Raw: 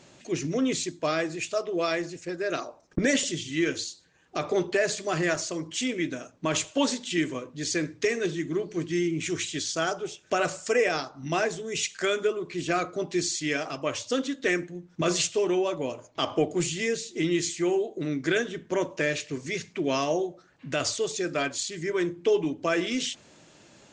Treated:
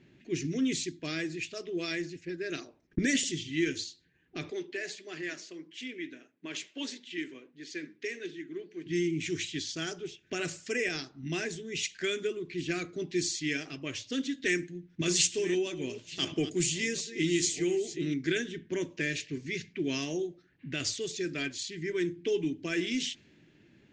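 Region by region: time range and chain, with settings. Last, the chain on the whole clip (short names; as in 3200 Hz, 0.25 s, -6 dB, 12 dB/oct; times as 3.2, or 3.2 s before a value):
4.5–8.86 HPF 340 Hz + flange 1.6 Hz, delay 0.8 ms, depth 6.8 ms, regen -86%
14.33–18.14 reverse delay 0.67 s, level -12.5 dB + high shelf 3700 Hz +5.5 dB
whole clip: low-pass opened by the level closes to 1900 Hz, open at -21 dBFS; band shelf 820 Hz -15 dB; gain -2.5 dB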